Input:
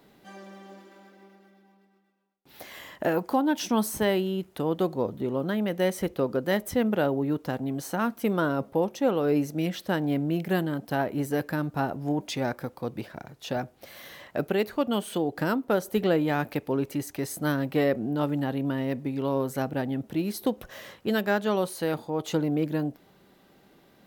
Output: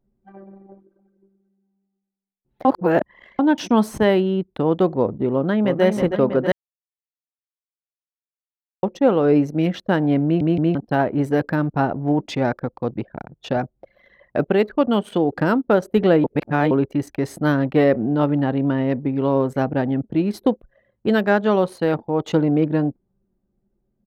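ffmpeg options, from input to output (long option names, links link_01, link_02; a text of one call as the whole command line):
ffmpeg -i in.wav -filter_complex "[0:a]asplit=2[link_01][link_02];[link_02]afade=type=in:start_time=5.32:duration=0.01,afade=type=out:start_time=5.83:duration=0.01,aecho=0:1:320|640|960|1280|1600|1920|2240|2560|2880|3200|3520:0.501187|0.350831|0.245582|0.171907|0.120335|0.0842345|0.0589642|0.0412749|0.0288924|0.0202247|0.0141573[link_03];[link_01][link_03]amix=inputs=2:normalize=0,asplit=12[link_04][link_05][link_06][link_07][link_08][link_09][link_10][link_11][link_12][link_13][link_14][link_15];[link_04]atrim=end=2.652[link_16];[link_05]atrim=start=2.648:end=3.392,asetpts=PTS-STARTPTS,areverse[link_17];[link_06]atrim=start=3.388:end=6.52,asetpts=PTS-STARTPTS,afade=type=out:start_time=3.128:duration=0.004:curve=hsin[link_18];[link_07]atrim=start=6.52:end=8.83,asetpts=PTS-STARTPTS,volume=0[link_19];[link_08]atrim=start=8.83:end=10.412,asetpts=PTS-STARTPTS,afade=type=in:duration=0.004:curve=hsin[link_20];[link_09]atrim=start=10.238:end=10.412[link_21];[link_10]atrim=start=10.238:end=10.412[link_22];[link_11]atrim=start=10.748:end=16.242[link_23];[link_12]atrim=start=16.238:end=16.712,asetpts=PTS-STARTPTS,areverse[link_24];[link_13]atrim=start=16.708:end=20.572[link_25];[link_14]atrim=start=20.568:end=21.022,asetpts=PTS-STARTPTS,volume=-5.5dB[link_26];[link_15]atrim=start=21.018[link_27];[link_16][link_17]acrossfade=duration=0.004:curve1=hsin:curve2=hsin[link_28];[link_18][link_19][link_20]concat=n=3:v=0:a=1[link_29];[link_28][link_29]acrossfade=duration=0.004:curve1=hsin:curve2=hsin[link_30];[link_30][link_21]acrossfade=duration=0.004:curve1=hsin:curve2=hsin[link_31];[link_31][link_22]acrossfade=duration=0.004:curve1=hsin:curve2=hsin[link_32];[link_32][link_23]acrossfade=duration=0.004:curve1=hsin:curve2=hsin[link_33];[link_33][link_24]acrossfade=duration=0.004:curve1=hsin:curve2=hsin[link_34];[link_34][link_25]acrossfade=duration=0.004:curve1=hsin:curve2=hsin[link_35];[link_35][link_26]acrossfade=duration=0.004:curve1=hsin:curve2=hsin[link_36];[link_36][link_27]acrossfade=duration=0.004:curve1=hsin:curve2=hsin,anlmdn=0.631,aemphasis=mode=reproduction:type=75fm,volume=7.5dB" out.wav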